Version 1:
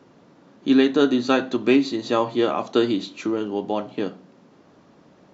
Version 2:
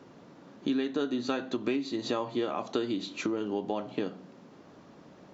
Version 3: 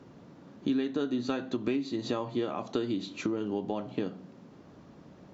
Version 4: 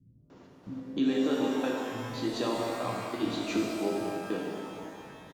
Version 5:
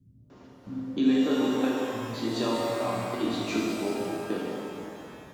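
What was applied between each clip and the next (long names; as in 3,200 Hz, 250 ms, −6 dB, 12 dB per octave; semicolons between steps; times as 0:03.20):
downward compressor 5 to 1, threshold −28 dBFS, peak gain reduction 14.5 dB
low-shelf EQ 180 Hz +11.5 dB; level −3 dB
gate pattern "x.x.xxx.x..xx" 90 BPM; multiband delay without the direct sound lows, highs 300 ms, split 180 Hz; reverb with rising layers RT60 2.4 s, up +12 semitones, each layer −8 dB, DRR −2 dB
convolution reverb RT60 1.5 s, pre-delay 6 ms, DRR 1.5 dB; level +1 dB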